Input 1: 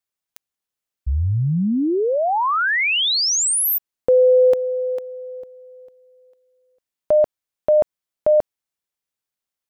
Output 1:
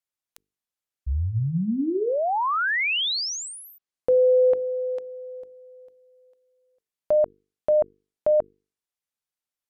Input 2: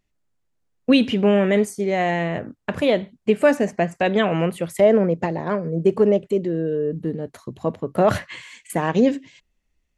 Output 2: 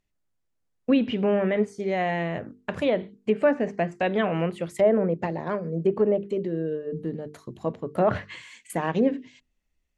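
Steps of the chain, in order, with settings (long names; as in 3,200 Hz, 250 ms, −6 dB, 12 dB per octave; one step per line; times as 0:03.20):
treble cut that deepens with the level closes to 1,900 Hz, closed at −12.5 dBFS
mains-hum notches 50/100/150/200/250/300/350/400/450 Hz
level −4.5 dB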